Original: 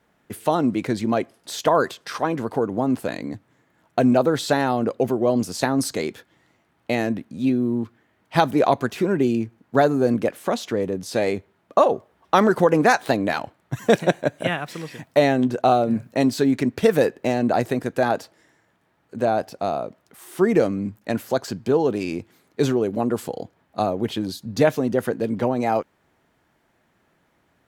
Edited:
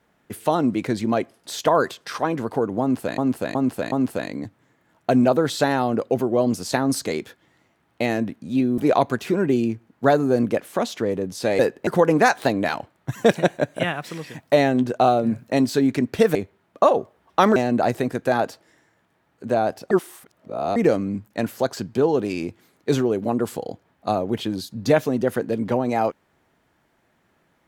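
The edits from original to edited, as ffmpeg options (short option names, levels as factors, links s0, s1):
-filter_complex "[0:a]asplit=11[s0][s1][s2][s3][s4][s5][s6][s7][s8][s9][s10];[s0]atrim=end=3.182[s11];[s1]atrim=start=2.808:end=3.182[s12];[s2]atrim=start=2.808:end=3.182[s13];[s3]atrim=start=2.808:end=7.672[s14];[s4]atrim=start=8.488:end=11.302[s15];[s5]atrim=start=16.988:end=17.272[s16];[s6]atrim=start=12.508:end=16.992[s17];[s7]atrim=start=11.298:end=12.512[s18];[s8]atrim=start=17.268:end=19.622[s19];[s9]atrim=start=19.618:end=20.472,asetpts=PTS-STARTPTS,areverse[s20];[s10]atrim=start=20.468[s21];[s11][s12]acrossfade=d=0.004:c1=hsin:c2=hsin[s22];[s22][s13]acrossfade=d=0.004:c1=hsin:c2=hsin[s23];[s23][s14]acrossfade=d=0.004:c1=hsin:c2=hsin[s24];[s24][s15]acrossfade=d=0.004:c1=hsin:c2=hsin[s25];[s25][s16]acrossfade=d=0.004:c1=hsin:c2=hsin[s26];[s26][s17]acrossfade=d=0.004:c1=hsin:c2=hsin[s27];[s27][s18]acrossfade=d=0.004:c1=hsin:c2=hsin[s28];[s28][s19]acrossfade=d=0.004:c1=hsin:c2=hsin[s29];[s29][s20]acrossfade=d=0.004:c1=hsin:c2=hsin[s30];[s30][s21]acrossfade=d=0.004:c1=hsin:c2=hsin"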